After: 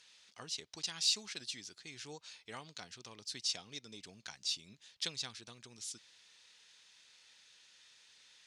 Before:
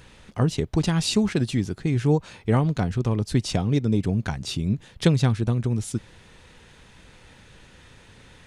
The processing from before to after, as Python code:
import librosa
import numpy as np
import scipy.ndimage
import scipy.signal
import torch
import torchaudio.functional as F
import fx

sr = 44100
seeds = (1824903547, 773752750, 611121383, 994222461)

p1 = fx.bandpass_q(x, sr, hz=5100.0, q=1.7)
p2 = 10.0 ** (-23.5 / 20.0) * np.tanh(p1 / 10.0 ** (-23.5 / 20.0))
p3 = p1 + F.gain(torch.from_numpy(p2), -10.5).numpy()
y = F.gain(torch.from_numpy(p3), -3.5).numpy()